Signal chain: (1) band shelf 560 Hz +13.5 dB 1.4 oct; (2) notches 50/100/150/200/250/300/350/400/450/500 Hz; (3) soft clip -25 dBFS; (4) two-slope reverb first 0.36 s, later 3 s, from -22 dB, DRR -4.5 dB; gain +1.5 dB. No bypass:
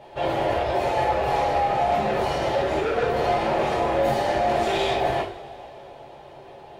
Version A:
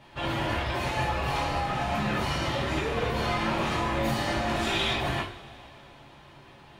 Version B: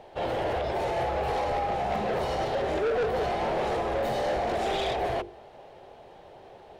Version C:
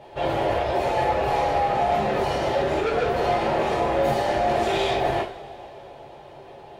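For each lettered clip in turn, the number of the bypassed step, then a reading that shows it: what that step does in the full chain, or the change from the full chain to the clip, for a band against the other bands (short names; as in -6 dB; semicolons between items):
1, 500 Hz band -10.5 dB; 4, crest factor change -8.0 dB; 2, momentary loudness spread change +4 LU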